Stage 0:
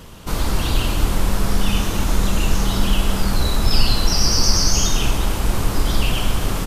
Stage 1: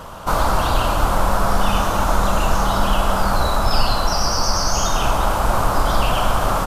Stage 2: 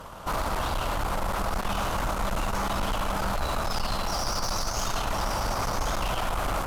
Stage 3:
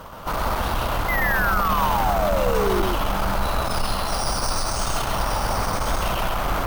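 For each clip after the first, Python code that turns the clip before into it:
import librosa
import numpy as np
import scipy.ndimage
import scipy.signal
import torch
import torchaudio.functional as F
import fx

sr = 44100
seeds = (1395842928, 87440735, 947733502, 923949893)

y1 = fx.band_shelf(x, sr, hz=900.0, db=12.5, octaves=1.7)
y1 = fx.rider(y1, sr, range_db=3, speed_s=0.5)
y1 = F.gain(torch.from_numpy(y1), -2.0).numpy()
y2 = y1 + 10.0 ** (-7.0 / 20.0) * np.pad(y1, (int(1068 * sr / 1000.0), 0))[:len(y1)]
y2 = 10.0 ** (-15.5 / 20.0) * np.tanh(y2 / 10.0 ** (-15.5 / 20.0))
y2 = fx.cheby_harmonics(y2, sr, harmonics=(4,), levels_db=(-16,), full_scale_db=-15.5)
y2 = F.gain(torch.from_numpy(y2), -7.0).numpy()
y3 = fx.spec_paint(y2, sr, seeds[0], shape='fall', start_s=1.08, length_s=1.74, low_hz=340.0, high_hz=2100.0, level_db=-28.0)
y3 = y3 + 10.0 ** (-3.0 / 20.0) * np.pad(y3, (int(132 * sr / 1000.0), 0))[:len(y3)]
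y3 = np.repeat(scipy.signal.resample_poly(y3, 1, 3), 3)[:len(y3)]
y3 = F.gain(torch.from_numpy(y3), 3.0).numpy()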